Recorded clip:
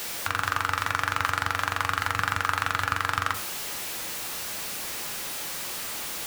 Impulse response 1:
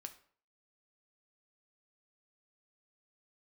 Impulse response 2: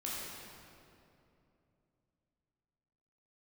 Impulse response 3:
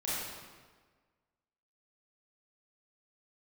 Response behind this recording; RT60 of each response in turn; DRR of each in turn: 1; 0.50, 2.8, 1.5 s; 6.5, -6.5, -9.5 dB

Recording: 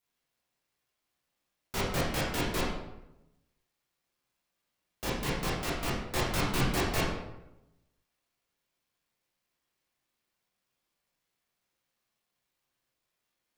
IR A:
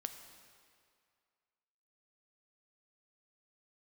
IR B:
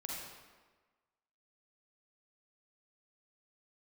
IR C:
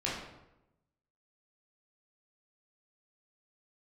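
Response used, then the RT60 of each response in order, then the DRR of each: C; 2.2, 1.4, 0.90 s; 7.0, -4.0, -6.5 dB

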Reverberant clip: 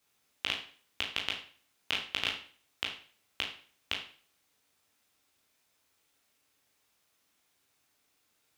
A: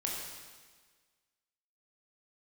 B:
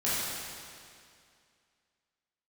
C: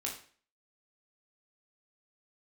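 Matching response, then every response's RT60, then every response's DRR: C; 1.5, 2.3, 0.45 s; -3.0, -11.0, -2.0 dB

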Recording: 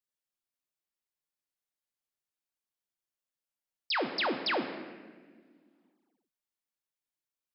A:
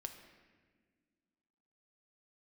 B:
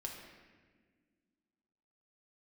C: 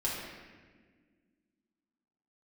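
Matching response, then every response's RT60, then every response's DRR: A; 1.6, 1.6, 1.6 s; 5.0, -0.5, -7.0 dB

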